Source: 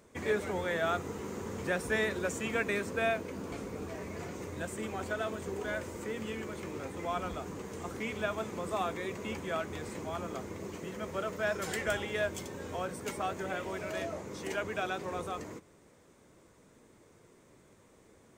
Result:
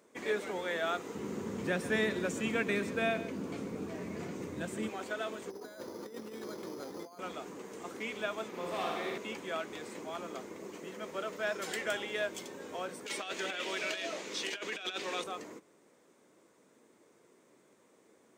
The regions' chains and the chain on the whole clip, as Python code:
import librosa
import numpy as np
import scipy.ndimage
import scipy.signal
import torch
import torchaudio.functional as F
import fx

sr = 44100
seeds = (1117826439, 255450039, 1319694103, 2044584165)

y = fx.chain(x, sr, fx.bass_treble(bass_db=15, treble_db=-1),
    fx.echo_single(ms=133, db=-14.5), at=(1.15, 4.89))
y = fx.chain(y, sr, fx.lowpass(hz=1500.0, slope=12),
    fx.over_compress(threshold_db=-40.0, ratio=-0.5),
    fx.resample_bad(factor=8, down='none', up='hold'), at=(5.5, 7.19))
y = fx.chain(y, sr, fx.peak_eq(hz=7800.0, db=-7.0, octaves=0.65),
    fx.clip_hard(threshold_db=-31.0),
    fx.room_flutter(wall_m=9.8, rt60_s=1.3), at=(8.48, 9.18))
y = fx.chain(y, sr, fx.weighting(curve='D'),
    fx.over_compress(threshold_db=-35.0, ratio=-0.5),
    fx.notch(hz=2100.0, q=28.0), at=(13.06, 15.24))
y = scipy.signal.sosfilt(scipy.signal.cheby1(2, 1.0, 270.0, 'highpass', fs=sr, output='sos'), y)
y = fx.dynamic_eq(y, sr, hz=3500.0, q=0.85, threshold_db=-53.0, ratio=4.0, max_db=5)
y = F.gain(torch.from_numpy(y), -2.5).numpy()